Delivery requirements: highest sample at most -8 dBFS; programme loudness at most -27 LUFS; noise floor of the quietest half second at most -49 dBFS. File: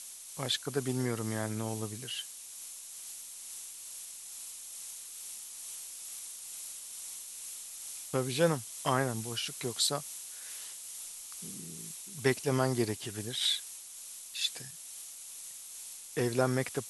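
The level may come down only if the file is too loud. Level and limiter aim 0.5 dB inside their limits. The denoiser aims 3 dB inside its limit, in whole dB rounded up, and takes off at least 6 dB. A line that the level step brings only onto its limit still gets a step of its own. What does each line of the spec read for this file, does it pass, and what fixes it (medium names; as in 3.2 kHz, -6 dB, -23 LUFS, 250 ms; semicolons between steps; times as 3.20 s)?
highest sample -12.5 dBFS: pass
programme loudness -35.5 LUFS: pass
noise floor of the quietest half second -47 dBFS: fail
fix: noise reduction 6 dB, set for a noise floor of -47 dBFS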